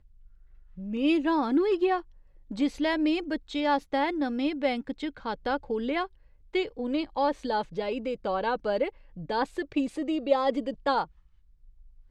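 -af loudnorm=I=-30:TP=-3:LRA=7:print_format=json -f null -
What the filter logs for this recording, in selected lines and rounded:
"input_i" : "-28.8",
"input_tp" : "-10.6",
"input_lra" : "2.0",
"input_thresh" : "-39.7",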